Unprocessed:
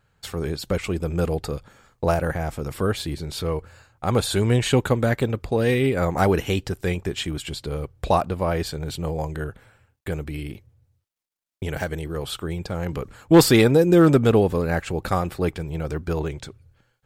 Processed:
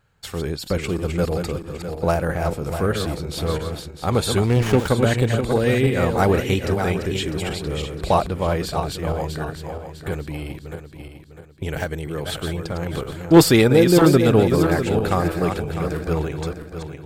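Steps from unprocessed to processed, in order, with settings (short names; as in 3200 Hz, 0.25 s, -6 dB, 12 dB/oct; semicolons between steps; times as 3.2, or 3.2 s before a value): regenerating reverse delay 0.326 s, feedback 59%, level -6 dB; 4.46–4.88 running maximum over 9 samples; gain +1 dB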